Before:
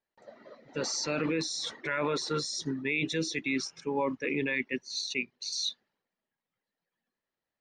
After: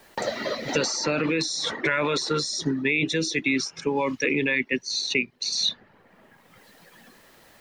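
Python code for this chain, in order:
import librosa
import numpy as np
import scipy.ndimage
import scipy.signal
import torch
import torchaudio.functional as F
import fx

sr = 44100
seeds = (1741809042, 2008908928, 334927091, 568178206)

y = fx.band_squash(x, sr, depth_pct=100)
y = F.gain(torch.from_numpy(y), 6.0).numpy()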